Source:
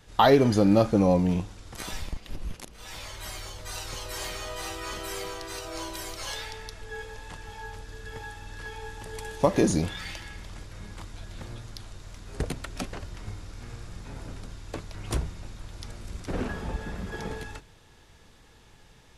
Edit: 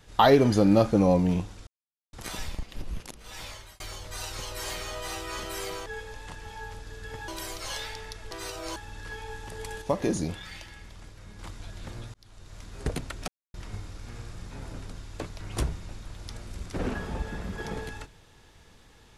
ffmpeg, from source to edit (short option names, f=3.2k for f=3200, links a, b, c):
-filter_complex "[0:a]asplit=12[a][b][c][d][e][f][g][h][i][j][k][l];[a]atrim=end=1.67,asetpts=PTS-STARTPTS,afade=t=out:st=1.666:d=0.004:c=hsin,apad=pad_dur=0.46[m];[b]atrim=start=1.67:end=3.34,asetpts=PTS-STARTPTS,afade=t=in:d=0.004:c=hsin,afade=t=out:st=1.33:d=0.34[n];[c]atrim=start=3.34:end=5.402,asetpts=PTS-STARTPTS,afade=t=in:d=0.004:c=hsin[o];[d]atrim=start=6.878:end=8.302[p];[e]atrim=start=5.848:end=6.882[q];[f]atrim=start=5.398:end=5.852[r];[g]atrim=start=8.298:end=9.362[s];[h]atrim=start=9.358:end=10.932,asetpts=PTS-STARTPTS,volume=-5dB[t];[i]atrim=start=10.928:end=11.68,asetpts=PTS-STARTPTS,afade=t=out:st=0.748:d=0.004:c=hsin[u];[j]atrim=start=11.68:end=12.82,asetpts=PTS-STARTPTS,afade=t=in:d=0.48,afade=t=out:st=1.136:d=0.004:c=hsin[v];[k]atrim=start=12.82:end=13.08,asetpts=PTS-STARTPTS,volume=0[w];[l]atrim=start=13.08,asetpts=PTS-STARTPTS,afade=t=in:d=0.004:c=hsin[x];[m][n][o]concat=n=3:v=0:a=1[y];[y][p]acrossfade=d=0.004:c1=hsin:c2=hsin[z];[z][q]acrossfade=d=0.004:c1=hsin:c2=hsin[aa];[aa][r]acrossfade=d=0.004:c1=hsin:c2=hsin[ab];[ab][s]acrossfade=d=0.004:c1=hsin:c2=hsin[ac];[ac][t]acrossfade=d=0.004:c1=hsin:c2=hsin[ad];[u][v][w][x]concat=n=4:v=0:a=1[ae];[ad][ae]acrossfade=d=0.004:c1=hsin:c2=hsin"